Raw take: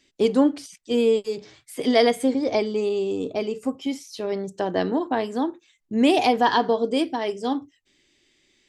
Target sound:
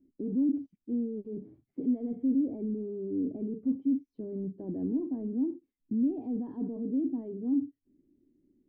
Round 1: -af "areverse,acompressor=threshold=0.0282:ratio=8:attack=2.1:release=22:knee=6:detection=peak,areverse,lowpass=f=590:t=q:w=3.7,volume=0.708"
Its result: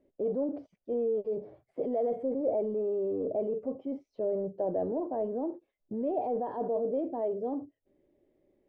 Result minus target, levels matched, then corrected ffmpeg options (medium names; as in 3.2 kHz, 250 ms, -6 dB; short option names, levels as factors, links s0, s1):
500 Hz band +11.0 dB
-af "areverse,acompressor=threshold=0.0282:ratio=8:attack=2.1:release=22:knee=6:detection=peak,areverse,lowpass=f=270:t=q:w=3.7,volume=0.708"